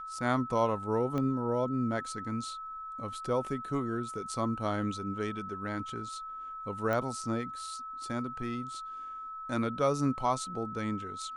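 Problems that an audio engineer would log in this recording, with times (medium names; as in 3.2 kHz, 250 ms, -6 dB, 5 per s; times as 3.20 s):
whine 1.3 kHz -39 dBFS
1.18 s: pop -22 dBFS
6.93 s: pop -20 dBFS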